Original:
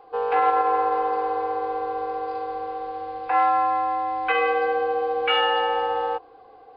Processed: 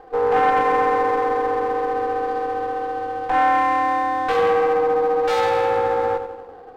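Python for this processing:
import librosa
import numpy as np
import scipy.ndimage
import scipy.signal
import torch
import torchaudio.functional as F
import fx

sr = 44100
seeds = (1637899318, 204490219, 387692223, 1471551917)

p1 = fx.peak_eq(x, sr, hz=2300.0, db=-13.5, octaves=2.0)
p2 = p1 + fx.echo_filtered(p1, sr, ms=90, feedback_pct=64, hz=1600.0, wet_db=-8.5, dry=0)
p3 = 10.0 ** (-18.0 / 20.0) * np.tanh(p2 / 10.0 ** (-18.0 / 20.0))
p4 = scipy.signal.sosfilt(scipy.signal.butter(2, 60.0, 'highpass', fs=sr, output='sos'), p3)
p5 = fx.running_max(p4, sr, window=9)
y = p5 * librosa.db_to_amplitude(8.5)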